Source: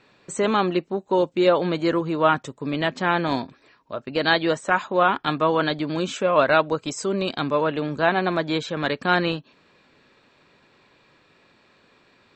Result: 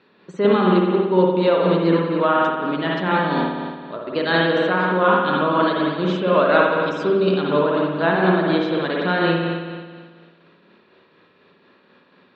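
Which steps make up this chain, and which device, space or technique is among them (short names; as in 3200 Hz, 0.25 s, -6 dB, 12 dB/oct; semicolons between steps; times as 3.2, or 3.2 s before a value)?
combo amplifier with spring reverb and tremolo (spring tank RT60 1.7 s, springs 54 ms, chirp 40 ms, DRR -3 dB; tremolo 4.1 Hz, depth 32%; speaker cabinet 110–4400 Hz, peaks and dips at 130 Hz -9 dB, 180 Hz +8 dB, 400 Hz +4 dB, 730 Hz -3 dB, 2300 Hz -5 dB)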